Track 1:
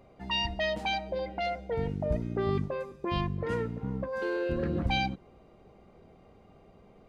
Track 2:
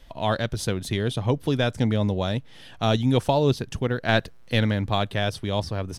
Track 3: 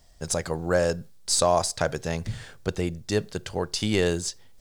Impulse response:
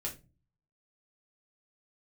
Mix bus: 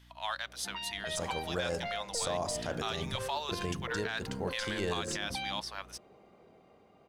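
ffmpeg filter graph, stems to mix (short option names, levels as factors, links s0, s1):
-filter_complex "[0:a]highpass=f=310:p=1,alimiter=level_in=2:limit=0.0631:level=0:latency=1:release=98,volume=0.501,acompressor=threshold=0.0158:ratio=6,adelay=450,volume=0.841[s0];[1:a]highpass=f=920:w=0.5412,highpass=f=920:w=1.3066,acontrast=89,aeval=exprs='val(0)+0.00501*(sin(2*PI*60*n/s)+sin(2*PI*2*60*n/s)/2+sin(2*PI*3*60*n/s)/3+sin(2*PI*4*60*n/s)/4+sin(2*PI*5*60*n/s)/5)':c=same,volume=0.251[s1];[2:a]agate=range=0.0224:threshold=0.0178:ratio=3:detection=peak,bandreject=f=53.97:t=h:w=4,bandreject=f=107.94:t=h:w=4,bandreject=f=161.91:t=h:w=4,bandreject=f=215.88:t=h:w=4,bandreject=f=269.85:t=h:w=4,bandreject=f=323.82:t=h:w=4,bandreject=f=377.79:t=h:w=4,bandreject=f=431.76:t=h:w=4,bandreject=f=485.73:t=h:w=4,bandreject=f=539.7:t=h:w=4,bandreject=f=593.67:t=h:w=4,bandreject=f=647.64:t=h:w=4,bandreject=f=701.61:t=h:w=4,bandreject=f=755.58:t=h:w=4,bandreject=f=809.55:t=h:w=4,bandreject=f=863.52:t=h:w=4,bandreject=f=917.49:t=h:w=4,bandreject=f=971.46:t=h:w=4,bandreject=f=1025.43:t=h:w=4,bandreject=f=1079.4:t=h:w=4,bandreject=f=1133.37:t=h:w=4,bandreject=f=1187.34:t=h:w=4,bandreject=f=1241.31:t=h:w=4,bandreject=f=1295.28:t=h:w=4,bandreject=f=1349.25:t=h:w=4,bandreject=f=1403.22:t=h:w=4,bandreject=f=1457.19:t=h:w=4,bandreject=f=1511.16:t=h:w=4,bandreject=f=1565.13:t=h:w=4,bandreject=f=1619.1:t=h:w=4,bandreject=f=1673.07:t=h:w=4,bandreject=f=1727.04:t=h:w=4,bandreject=f=1781.01:t=h:w=4,adelay=850,volume=0.299[s2];[s0][s1][s2]amix=inputs=3:normalize=0,dynaudnorm=f=330:g=9:m=1.41,alimiter=limit=0.0668:level=0:latency=1:release=66"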